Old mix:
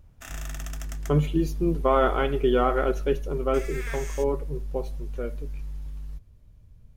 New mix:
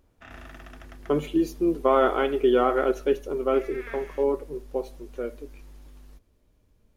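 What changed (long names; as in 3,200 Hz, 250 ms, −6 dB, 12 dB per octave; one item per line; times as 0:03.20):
speech: add low shelf with overshoot 200 Hz −12 dB, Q 1.5
background: add high-frequency loss of the air 340 metres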